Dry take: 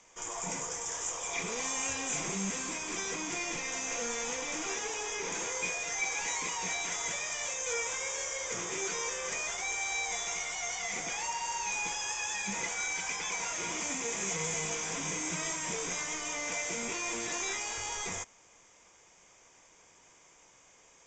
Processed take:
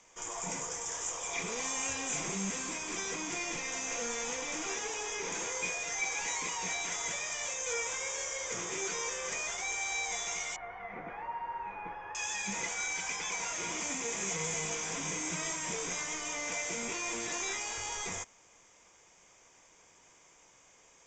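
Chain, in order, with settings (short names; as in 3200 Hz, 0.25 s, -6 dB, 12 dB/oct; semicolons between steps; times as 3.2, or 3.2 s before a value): 10.56–12.15 LPF 1700 Hz 24 dB/oct; gain -1 dB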